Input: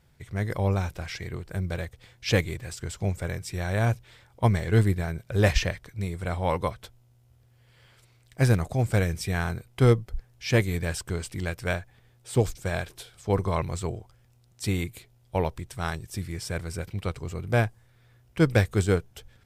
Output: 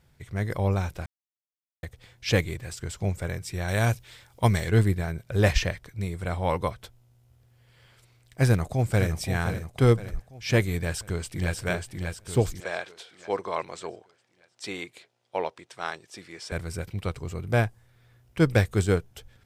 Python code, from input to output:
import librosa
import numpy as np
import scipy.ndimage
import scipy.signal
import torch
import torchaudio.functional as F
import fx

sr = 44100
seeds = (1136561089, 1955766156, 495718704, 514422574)

y = fx.high_shelf(x, sr, hz=2500.0, db=9.0, at=(3.68, 4.7))
y = fx.echo_throw(y, sr, start_s=8.47, length_s=0.7, ms=520, feedback_pct=50, wet_db=-9.5)
y = fx.echo_throw(y, sr, start_s=10.77, length_s=0.79, ms=590, feedback_pct=50, wet_db=-4.0)
y = fx.bandpass_edges(y, sr, low_hz=410.0, high_hz=5900.0, at=(12.6, 16.52))
y = fx.edit(y, sr, fx.silence(start_s=1.06, length_s=0.77), tone=tone)